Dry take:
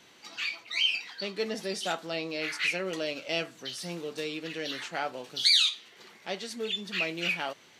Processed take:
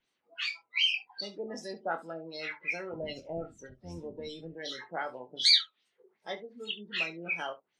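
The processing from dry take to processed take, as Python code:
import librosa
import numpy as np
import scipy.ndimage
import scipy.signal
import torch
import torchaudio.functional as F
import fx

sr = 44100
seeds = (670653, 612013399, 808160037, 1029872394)

y = fx.octave_divider(x, sr, octaves=1, level_db=-3.0, at=(2.92, 4.53))
y = fx.hpss(y, sr, part='harmonic', gain_db=-7)
y = fx.filter_lfo_lowpass(y, sr, shape='sine', hz=2.6, low_hz=560.0, high_hz=7700.0, q=1.4)
y = fx.noise_reduce_blind(y, sr, reduce_db=21)
y = fx.room_early_taps(y, sr, ms=(24, 70), db=(-8.0, -18.0))
y = y * librosa.db_to_amplitude(-1.5)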